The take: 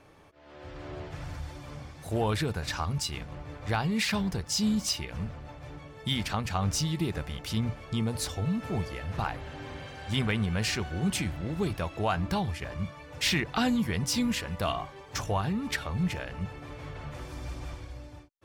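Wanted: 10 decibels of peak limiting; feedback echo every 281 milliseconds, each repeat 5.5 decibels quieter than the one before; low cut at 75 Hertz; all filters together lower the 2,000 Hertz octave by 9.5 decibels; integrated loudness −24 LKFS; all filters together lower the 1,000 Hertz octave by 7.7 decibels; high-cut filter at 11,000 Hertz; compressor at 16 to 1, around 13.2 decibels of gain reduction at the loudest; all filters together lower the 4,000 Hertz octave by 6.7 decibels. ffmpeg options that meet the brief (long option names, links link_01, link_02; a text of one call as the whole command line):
ffmpeg -i in.wav -af "highpass=75,lowpass=11000,equalizer=frequency=1000:width_type=o:gain=-8.5,equalizer=frequency=2000:width_type=o:gain=-8,equalizer=frequency=4000:width_type=o:gain=-6,acompressor=threshold=-38dB:ratio=16,alimiter=level_in=13.5dB:limit=-24dB:level=0:latency=1,volume=-13.5dB,aecho=1:1:281|562|843|1124|1405|1686|1967:0.531|0.281|0.149|0.079|0.0419|0.0222|0.0118,volume=21dB" out.wav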